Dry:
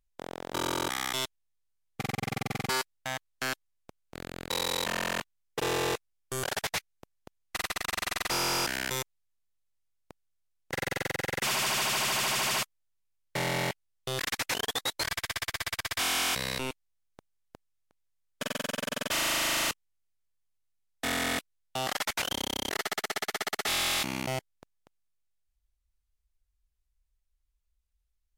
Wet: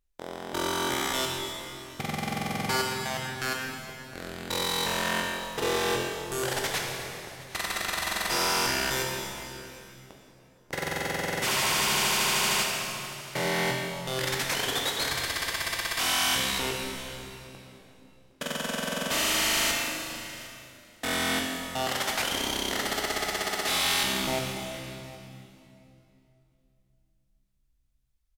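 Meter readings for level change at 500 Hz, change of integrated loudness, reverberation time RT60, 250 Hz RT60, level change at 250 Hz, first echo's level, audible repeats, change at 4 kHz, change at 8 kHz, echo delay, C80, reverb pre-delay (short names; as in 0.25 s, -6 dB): +4.0 dB, +3.0 dB, 2.9 s, 3.6 s, +4.0 dB, -20.5 dB, 1, +3.5 dB, +3.5 dB, 0.762 s, 2.0 dB, 8 ms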